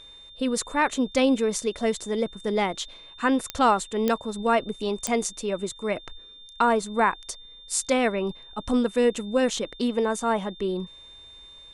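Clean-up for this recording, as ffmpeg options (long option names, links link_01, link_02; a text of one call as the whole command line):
ffmpeg -i in.wav -af "adeclick=threshold=4,bandreject=frequency=3600:width=30" out.wav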